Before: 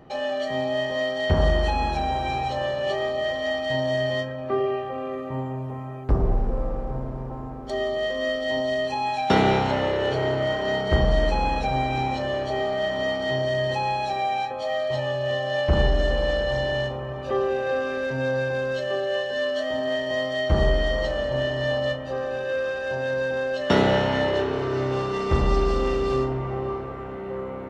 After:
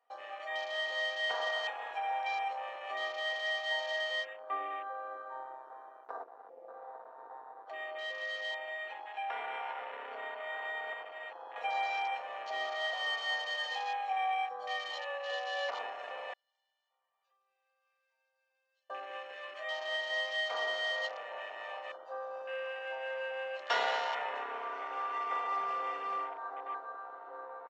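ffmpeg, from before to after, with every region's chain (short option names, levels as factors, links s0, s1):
-filter_complex "[0:a]asettb=1/sr,asplit=3[s0][s1][s2];[s0]atrim=end=6.234[s3];[s1]atrim=start=6.23:end=11.56,asetpts=PTS-STARTPTS,afade=t=in:d=0.004:c=qsin,afade=t=out:st=5.326:d=0.004:c=qsin,lowpass=4100,acompressor=threshold=0.0562:ratio=5:attack=3.2:release=140:knee=1:detection=peak,aecho=1:1:47|111|181:0.126|0.119|0.158,atrim=end_sample=235053[s4];[s2]atrim=start=11.556[s5];[s3][s4]acrossfade=d=0.004:c1=hsin:c2=qsin[s6];[s6][s5]acrossfade=d=0.004:c1=qsin:c2=hsin,asettb=1/sr,asplit=3[s7][s8][s9];[s7]atrim=end=12.934[s10];[s8]atrim=start=12.93:end=15.7,asetpts=PTS-STARTPTS,afade=t=in:d=0.004:c=qsin,afade=t=out:st=2.766:d=0.004:c=qsin,highpass=57,aecho=1:1:73|83|391|403:0.251|0.282|0.141|0.119,atrim=end_sample=122157,afreqshift=-27[s11];[s9]atrim=start=15.696[s12];[s10][s11]acrossfade=d=0.004:c1=hsin:c2=qsin[s13];[s13][s12]acrossfade=d=0.004:c1=qsin:c2=hsin,asettb=1/sr,asplit=3[s14][s15][s16];[s14]atrim=end=16.334[s17];[s15]atrim=start=16.33:end=18.9,asetpts=PTS-STARTPTS,afade=t=in:d=0.004:c=qsin,afade=t=out:st=2.566:d=0.004:c=qsin,lowpass=f=1400:p=1,aderivative,acompressor=threshold=0.00282:ratio=4:attack=3.2:release=140:knee=1:detection=peak[s18];[s16]atrim=start=18.896[s19];[s17][s18]acrossfade=d=0.004:c1=hsin:c2=qsin[s20];[s20][s19]acrossfade=d=0.004:c1=qsin:c2=hsin,highpass=f=680:w=0.5412,highpass=f=680:w=1.3066,aecho=1:1:4.2:0.76,afwtdn=0.0158,volume=0.447"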